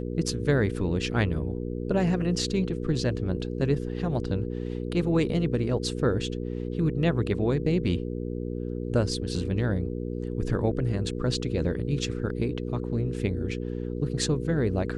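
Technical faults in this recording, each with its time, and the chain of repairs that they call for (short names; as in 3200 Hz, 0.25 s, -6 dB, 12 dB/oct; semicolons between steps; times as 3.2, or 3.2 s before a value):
hum 60 Hz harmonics 8 -32 dBFS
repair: de-hum 60 Hz, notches 8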